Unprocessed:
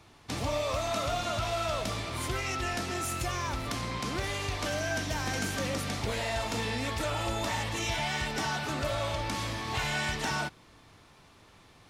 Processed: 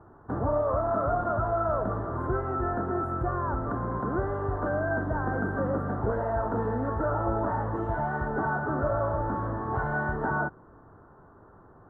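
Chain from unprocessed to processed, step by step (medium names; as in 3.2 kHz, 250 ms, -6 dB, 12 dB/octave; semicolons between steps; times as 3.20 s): elliptic low-pass 1.5 kHz, stop band 40 dB; peaking EQ 390 Hz +4.5 dB 0.46 oct; trim +5 dB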